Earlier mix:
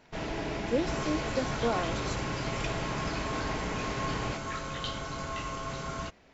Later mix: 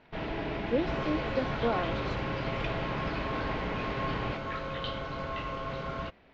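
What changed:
second sound: add bell 530 Hz +7 dB 0.27 oct; master: add LPF 3800 Hz 24 dB/oct

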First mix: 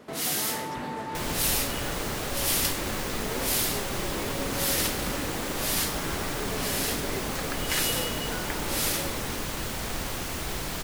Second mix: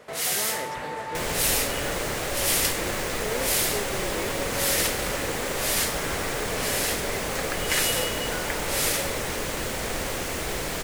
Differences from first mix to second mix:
first sound: add bell 280 Hz -12 dB 1.3 oct; master: add ten-band EQ 500 Hz +8 dB, 2000 Hz +5 dB, 8000 Hz +4 dB

